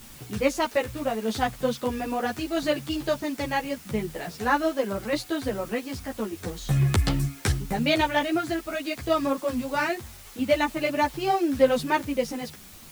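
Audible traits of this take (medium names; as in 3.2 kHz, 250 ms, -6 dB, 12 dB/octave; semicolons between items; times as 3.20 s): tremolo saw down 0.78 Hz, depth 40%; a quantiser's noise floor 8-bit, dither triangular; a shimmering, thickened sound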